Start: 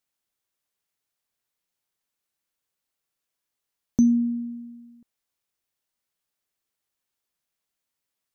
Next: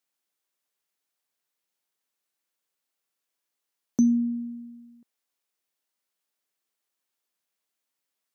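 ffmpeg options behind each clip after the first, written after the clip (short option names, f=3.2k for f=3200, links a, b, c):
-af "highpass=210"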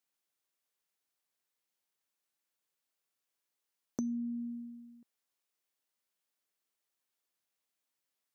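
-af "acompressor=threshold=-32dB:ratio=4,volume=-3.5dB"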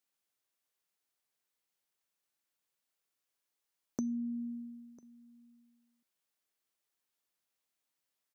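-af "aecho=1:1:998:0.075"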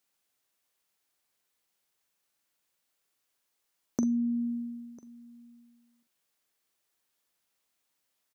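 -filter_complex "[0:a]asplit=2[a][b];[b]adelay=43,volume=-9dB[c];[a][c]amix=inputs=2:normalize=0,volume=6.5dB"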